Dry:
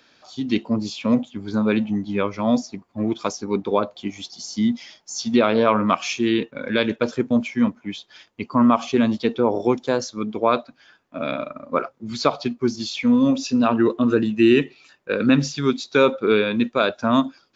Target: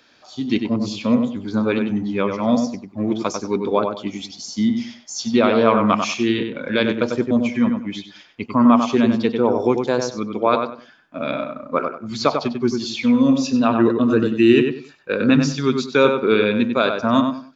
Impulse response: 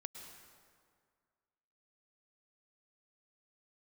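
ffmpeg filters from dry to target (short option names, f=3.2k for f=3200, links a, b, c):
-filter_complex "[0:a]asplit=2[a][b];[b]adelay=96,lowpass=f=2.4k:p=1,volume=-5dB,asplit=2[c][d];[d]adelay=96,lowpass=f=2.4k:p=1,volume=0.26,asplit=2[e][f];[f]adelay=96,lowpass=f=2.4k:p=1,volume=0.26[g];[a][c][e][g]amix=inputs=4:normalize=0,volume=1dB"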